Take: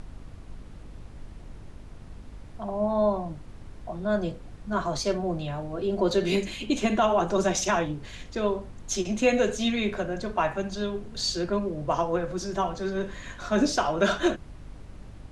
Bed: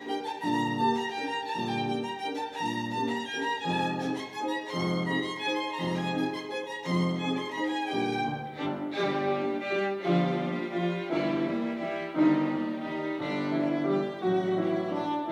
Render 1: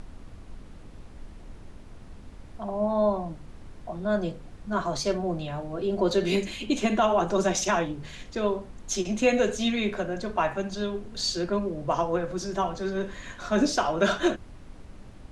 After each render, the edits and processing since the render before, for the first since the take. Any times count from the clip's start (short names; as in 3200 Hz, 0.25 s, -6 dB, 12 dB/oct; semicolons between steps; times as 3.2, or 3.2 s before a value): de-hum 50 Hz, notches 3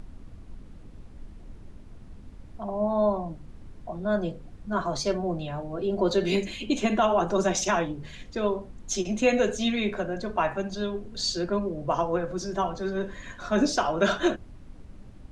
denoiser 6 dB, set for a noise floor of -46 dBFS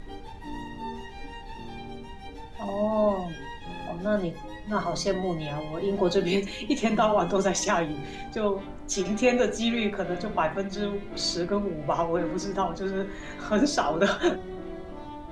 add bed -10.5 dB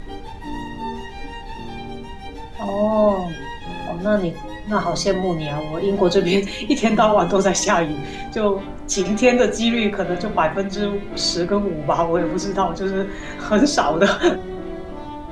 gain +7.5 dB